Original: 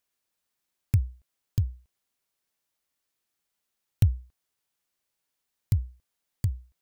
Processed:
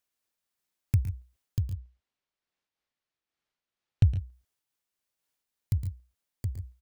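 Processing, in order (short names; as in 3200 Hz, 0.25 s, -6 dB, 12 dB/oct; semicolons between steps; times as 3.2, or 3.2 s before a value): 1.62–4.07 LPF 4200 Hz 12 dB/oct; 5.77–6.45 compressor, threshold -31 dBFS, peak gain reduction 4.5 dB; tapped delay 0.113/0.135/0.146 s -11.5/-13.5/-15.5 dB; noise-modulated level, depth 55%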